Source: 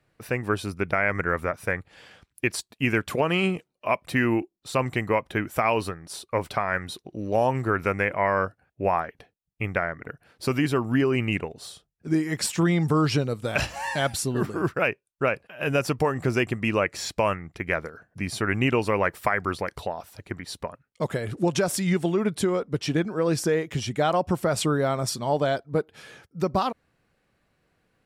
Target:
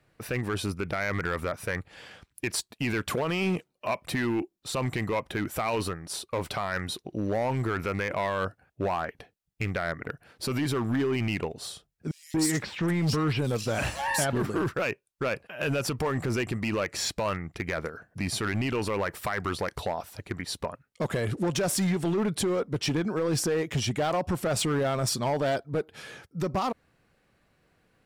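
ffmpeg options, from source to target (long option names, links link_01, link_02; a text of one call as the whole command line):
ffmpeg -i in.wav -filter_complex "[0:a]alimiter=limit=-19.5dB:level=0:latency=1:release=33,volume=24.5dB,asoftclip=hard,volume=-24.5dB,asettb=1/sr,asplit=3[link_01][link_02][link_03];[link_01]atrim=end=12.114[link_04];[link_02]atrim=start=12.11:end=14.33,asetpts=PTS-STARTPTS,afade=type=in:duration=0.004:curve=qsin,afade=type=out:start_time=2.216:duration=0.004:curve=qsin,acrossover=split=3700[link_05][link_06];[link_05]adelay=230[link_07];[link_07][link_06]amix=inputs=2:normalize=0,atrim=end_sample=97902[link_08];[link_03]atrim=start=14.326[link_09];[link_04][link_08]acrossfade=duration=0.004:curve1=hsin:curve2=qsin[link_10];[link_10][link_09]acrossfade=duration=0.004:curve1=qsin:curve2=hsin,volume=2.5dB" out.wav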